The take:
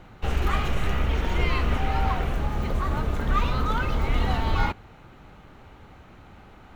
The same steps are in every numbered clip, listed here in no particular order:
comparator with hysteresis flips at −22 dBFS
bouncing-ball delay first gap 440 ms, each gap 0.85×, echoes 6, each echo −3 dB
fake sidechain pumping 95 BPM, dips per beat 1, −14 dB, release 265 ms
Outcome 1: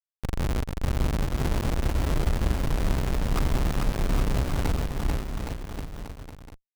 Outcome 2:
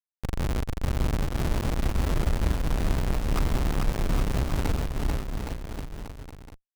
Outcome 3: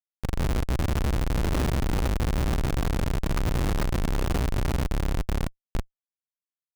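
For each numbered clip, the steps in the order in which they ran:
comparator with hysteresis, then fake sidechain pumping, then bouncing-ball delay
fake sidechain pumping, then comparator with hysteresis, then bouncing-ball delay
fake sidechain pumping, then bouncing-ball delay, then comparator with hysteresis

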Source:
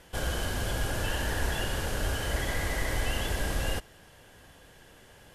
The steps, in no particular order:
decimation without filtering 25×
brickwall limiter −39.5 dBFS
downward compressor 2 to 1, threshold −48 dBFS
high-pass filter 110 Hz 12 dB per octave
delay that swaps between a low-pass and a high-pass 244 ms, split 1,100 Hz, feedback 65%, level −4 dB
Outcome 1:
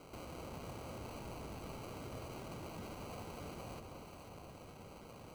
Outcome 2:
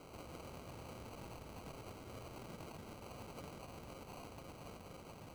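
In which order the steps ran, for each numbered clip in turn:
high-pass filter, then decimation without filtering, then brickwall limiter, then downward compressor, then delay that swaps between a low-pass and a high-pass
delay that swaps between a low-pass and a high-pass, then downward compressor, then brickwall limiter, then high-pass filter, then decimation without filtering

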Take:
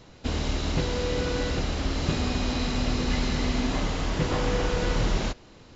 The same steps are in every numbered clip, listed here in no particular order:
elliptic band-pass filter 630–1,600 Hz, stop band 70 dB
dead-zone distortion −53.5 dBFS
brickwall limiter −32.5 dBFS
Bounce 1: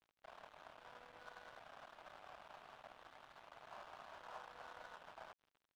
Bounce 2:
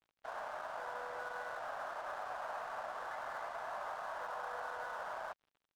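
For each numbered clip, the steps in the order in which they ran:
brickwall limiter, then elliptic band-pass filter, then dead-zone distortion
elliptic band-pass filter, then brickwall limiter, then dead-zone distortion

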